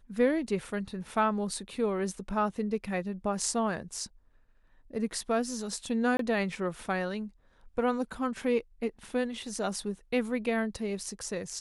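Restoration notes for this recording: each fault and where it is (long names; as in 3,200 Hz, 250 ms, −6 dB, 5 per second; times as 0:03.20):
0:06.17–0:06.19: drop-out 23 ms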